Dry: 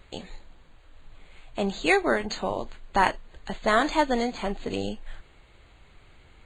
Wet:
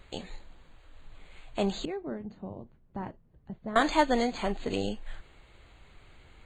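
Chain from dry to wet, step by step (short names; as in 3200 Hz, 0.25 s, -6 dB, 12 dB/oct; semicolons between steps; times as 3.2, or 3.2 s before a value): 1.85–3.76 band-pass 140 Hz, Q 1.4; gain -1 dB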